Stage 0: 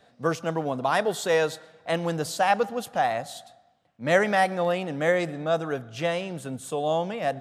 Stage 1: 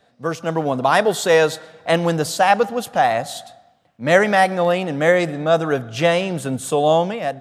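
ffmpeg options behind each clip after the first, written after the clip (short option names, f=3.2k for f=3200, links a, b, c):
-af "dynaudnorm=f=190:g=5:m=11.5dB"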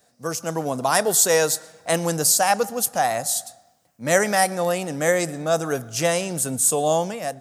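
-af "aexciter=amount=7.9:drive=3.4:freq=5k,volume=-5dB"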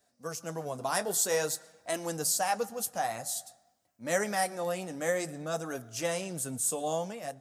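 -af "flanger=delay=3:depth=7.5:regen=-44:speed=0.51:shape=sinusoidal,volume=-7dB"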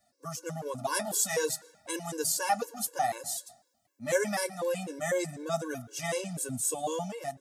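-af "afftfilt=real='re*gt(sin(2*PI*4*pts/sr)*(1-2*mod(floor(b*sr/1024/290),2)),0)':imag='im*gt(sin(2*PI*4*pts/sr)*(1-2*mod(floor(b*sr/1024/290),2)),0)':win_size=1024:overlap=0.75,volume=3.5dB"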